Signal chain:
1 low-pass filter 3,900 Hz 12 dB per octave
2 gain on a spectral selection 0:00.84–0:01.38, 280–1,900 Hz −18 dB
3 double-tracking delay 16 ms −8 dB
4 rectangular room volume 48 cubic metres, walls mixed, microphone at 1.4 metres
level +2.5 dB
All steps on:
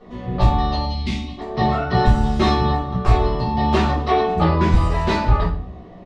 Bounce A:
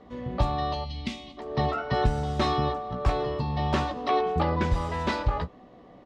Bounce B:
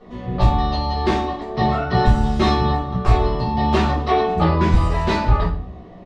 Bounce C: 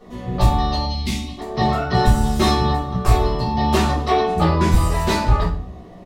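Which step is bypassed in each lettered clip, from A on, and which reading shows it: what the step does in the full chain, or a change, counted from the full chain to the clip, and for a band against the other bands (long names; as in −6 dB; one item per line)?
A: 4, echo-to-direct ratio 7.0 dB to none audible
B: 2, change in momentary loudness spread −3 LU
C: 1, 4 kHz band +3.0 dB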